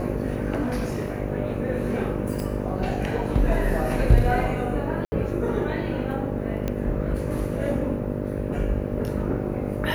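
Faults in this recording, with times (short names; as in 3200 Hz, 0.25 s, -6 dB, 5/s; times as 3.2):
buzz 50 Hz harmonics 12 -29 dBFS
0.62–1.2 clipped -21.5 dBFS
2.4 pop
5.05–5.12 gap 70 ms
6.68 pop -14 dBFS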